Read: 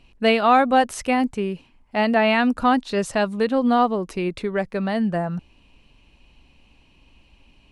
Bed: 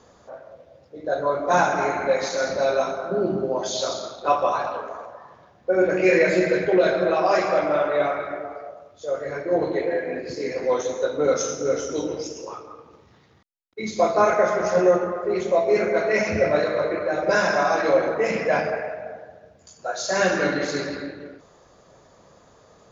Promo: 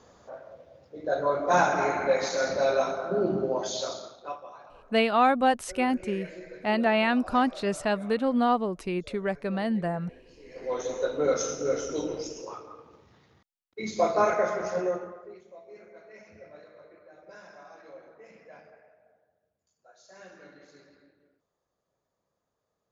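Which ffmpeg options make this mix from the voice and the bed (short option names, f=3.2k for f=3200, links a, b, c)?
-filter_complex "[0:a]adelay=4700,volume=-5.5dB[a];[1:a]volume=16dB,afade=t=out:st=3.49:d=0.93:silence=0.0944061,afade=t=in:st=10.47:d=0.47:silence=0.112202,afade=t=out:st=14.15:d=1.26:silence=0.0595662[b];[a][b]amix=inputs=2:normalize=0"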